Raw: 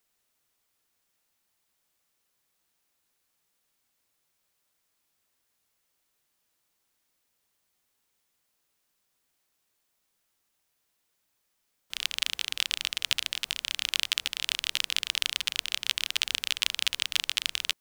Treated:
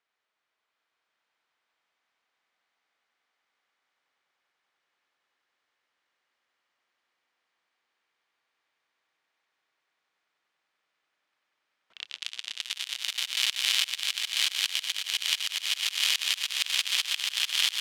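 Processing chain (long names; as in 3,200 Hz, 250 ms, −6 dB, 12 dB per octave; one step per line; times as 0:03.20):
high-pass filter 1,200 Hz 6 dB per octave
notch filter 2,700 Hz, Q 26
on a send: echo that builds up and dies away 96 ms, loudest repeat 8, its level −9 dB
on the sum: low-pass that shuts in the quiet parts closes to 2,300 Hz, open at −25.5 dBFS
in parallel at 0 dB: brickwall limiter −11.5 dBFS, peak gain reduction 8 dB
on the sum: volume swells 156 ms
level −2 dB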